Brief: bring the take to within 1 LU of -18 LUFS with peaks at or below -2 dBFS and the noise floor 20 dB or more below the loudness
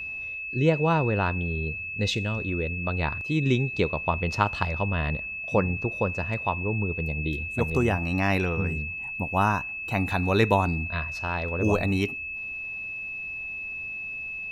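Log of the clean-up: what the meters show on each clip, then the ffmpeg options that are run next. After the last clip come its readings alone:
steady tone 2600 Hz; tone level -32 dBFS; loudness -26.5 LUFS; peak -7.0 dBFS; loudness target -18.0 LUFS
-> -af "bandreject=f=2.6k:w=30"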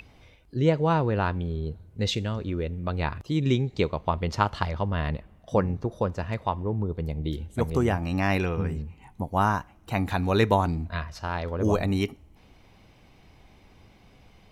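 steady tone none; loudness -27.5 LUFS; peak -7.0 dBFS; loudness target -18.0 LUFS
-> -af "volume=9.5dB,alimiter=limit=-2dB:level=0:latency=1"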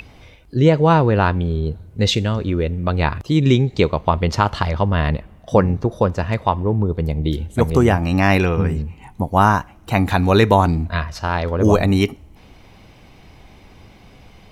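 loudness -18.0 LUFS; peak -2.0 dBFS; noise floor -46 dBFS

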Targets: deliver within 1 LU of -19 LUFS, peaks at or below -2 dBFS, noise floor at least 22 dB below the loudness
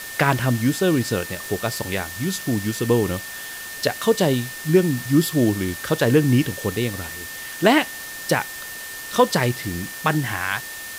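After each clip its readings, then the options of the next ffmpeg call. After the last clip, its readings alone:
steady tone 1800 Hz; tone level -35 dBFS; noise floor -34 dBFS; noise floor target -44 dBFS; loudness -22.0 LUFS; peak -4.0 dBFS; loudness target -19.0 LUFS
-> -af "bandreject=f=1.8k:w=30"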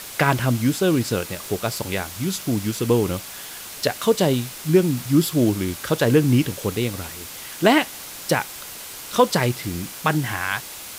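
steady tone none; noise floor -37 dBFS; noise floor target -44 dBFS
-> -af "afftdn=nr=7:nf=-37"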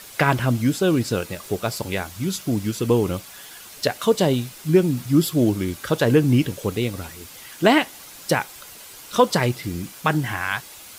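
noise floor -42 dBFS; noise floor target -44 dBFS
-> -af "afftdn=nr=6:nf=-42"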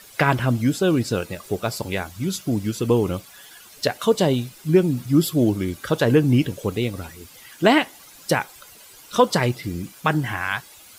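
noise floor -47 dBFS; loudness -22.0 LUFS; peak -3.0 dBFS; loudness target -19.0 LUFS
-> -af "volume=3dB,alimiter=limit=-2dB:level=0:latency=1"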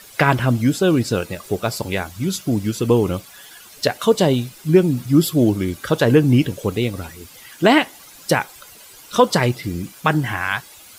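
loudness -19.0 LUFS; peak -2.0 dBFS; noise floor -44 dBFS

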